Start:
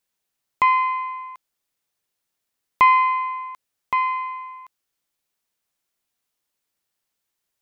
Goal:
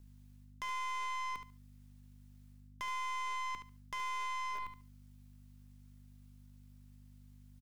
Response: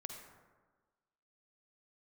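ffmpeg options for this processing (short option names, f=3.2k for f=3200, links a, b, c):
-filter_complex "[0:a]areverse,acompressor=threshold=-27dB:ratio=16,areverse,aeval=exprs='max(val(0),0)':c=same,aeval=exprs='val(0)+0.000794*(sin(2*PI*50*n/s)+sin(2*PI*2*50*n/s)/2+sin(2*PI*3*50*n/s)/3+sin(2*PI*4*50*n/s)/4+sin(2*PI*5*50*n/s)/5)':c=same,asplit=2[a][b];[b]acrusher=bits=5:mix=0:aa=0.000001,volume=-5.5dB[c];[a][c]amix=inputs=2:normalize=0,acrossover=split=480|2400[d][e][f];[d]acompressor=threshold=-42dB:ratio=4[g];[e]acompressor=threshold=-39dB:ratio=4[h];[f]acompressor=threshold=-50dB:ratio=4[i];[g][h][i]amix=inputs=3:normalize=0,aeval=exprs='(tanh(158*val(0)+0.3)-tanh(0.3))/158':c=same,aecho=1:1:72|144|216:0.355|0.0639|0.0115,volume=7.5dB"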